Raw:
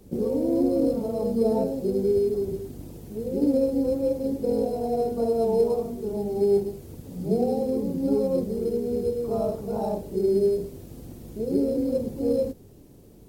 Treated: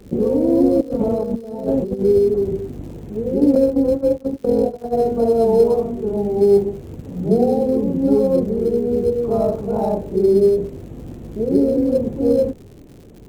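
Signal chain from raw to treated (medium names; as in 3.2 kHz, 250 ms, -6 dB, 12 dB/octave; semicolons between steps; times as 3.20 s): local Wiener filter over 9 samples; 0.81–2.03 s: compressor with a negative ratio -29 dBFS, ratio -0.5; 3.55–4.97 s: gate -25 dBFS, range -23 dB; crackle 140 per s -45 dBFS; trim +8 dB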